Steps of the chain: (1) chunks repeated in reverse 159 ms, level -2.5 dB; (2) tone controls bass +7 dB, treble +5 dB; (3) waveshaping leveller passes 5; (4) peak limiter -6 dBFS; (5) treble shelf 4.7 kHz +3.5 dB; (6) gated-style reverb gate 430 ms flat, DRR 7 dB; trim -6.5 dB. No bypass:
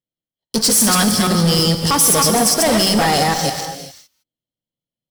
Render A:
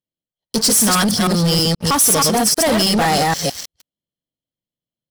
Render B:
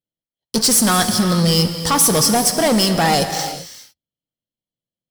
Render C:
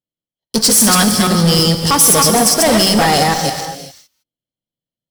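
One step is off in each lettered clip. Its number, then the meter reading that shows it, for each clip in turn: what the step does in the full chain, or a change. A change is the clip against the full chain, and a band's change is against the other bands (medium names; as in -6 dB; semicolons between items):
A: 6, momentary loudness spread change -3 LU; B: 1, momentary loudness spread change -1 LU; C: 4, mean gain reduction 2.5 dB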